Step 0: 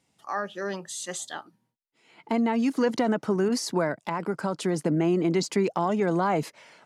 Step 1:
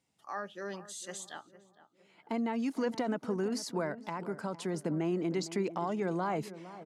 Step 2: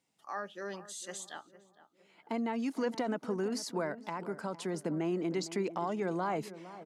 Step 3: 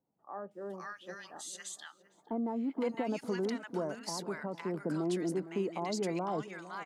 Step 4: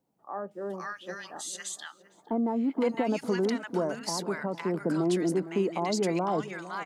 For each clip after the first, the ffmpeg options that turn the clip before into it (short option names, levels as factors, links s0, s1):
-filter_complex "[0:a]asplit=2[s0][s1];[s1]adelay=458,lowpass=f=1200:p=1,volume=0.2,asplit=2[s2][s3];[s3]adelay=458,lowpass=f=1200:p=1,volume=0.44,asplit=2[s4][s5];[s5]adelay=458,lowpass=f=1200:p=1,volume=0.44,asplit=2[s6][s7];[s7]adelay=458,lowpass=f=1200:p=1,volume=0.44[s8];[s0][s2][s4][s6][s8]amix=inputs=5:normalize=0,volume=0.376"
-af "equalizer=f=70:t=o:w=1.3:g=-13.5"
-filter_complex "[0:a]acrossover=split=1100[s0][s1];[s1]adelay=510[s2];[s0][s2]amix=inputs=2:normalize=0"
-af "bandreject=f=50:t=h:w=6,bandreject=f=100:t=h:w=6,bandreject=f=150:t=h:w=6,volume=2.11"